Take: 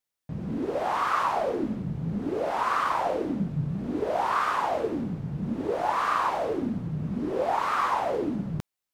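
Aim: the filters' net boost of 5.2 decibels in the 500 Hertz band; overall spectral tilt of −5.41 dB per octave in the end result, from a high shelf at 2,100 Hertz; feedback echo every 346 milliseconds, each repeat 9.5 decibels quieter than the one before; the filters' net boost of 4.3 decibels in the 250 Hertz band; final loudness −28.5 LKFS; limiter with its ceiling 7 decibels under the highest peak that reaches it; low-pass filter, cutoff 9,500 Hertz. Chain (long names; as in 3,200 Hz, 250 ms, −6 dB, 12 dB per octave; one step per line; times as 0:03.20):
low-pass filter 9,500 Hz
parametric band 250 Hz +4 dB
parametric band 500 Hz +5 dB
high-shelf EQ 2,100 Hz +6.5 dB
brickwall limiter −16.5 dBFS
repeating echo 346 ms, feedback 33%, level −9.5 dB
level −3 dB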